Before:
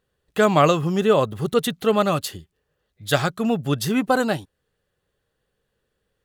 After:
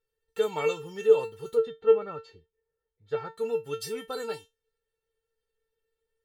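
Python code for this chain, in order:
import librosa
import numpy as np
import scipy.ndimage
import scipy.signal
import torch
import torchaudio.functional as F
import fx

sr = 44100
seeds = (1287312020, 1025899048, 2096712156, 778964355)

y = fx.lowpass(x, sr, hz=1500.0, slope=12, at=(1.54, 3.31))
y = fx.comb_fb(y, sr, f0_hz=450.0, decay_s=0.19, harmonics='all', damping=0.0, mix_pct=100)
y = y * 10.0 ** (4.5 / 20.0)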